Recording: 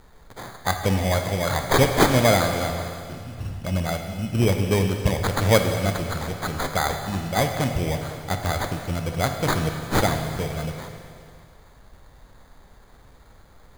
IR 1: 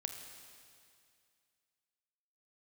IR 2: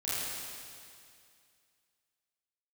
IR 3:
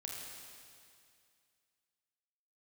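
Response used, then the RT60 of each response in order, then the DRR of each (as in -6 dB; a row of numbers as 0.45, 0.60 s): 1; 2.3, 2.3, 2.3 s; 5.0, -12.0, -2.5 dB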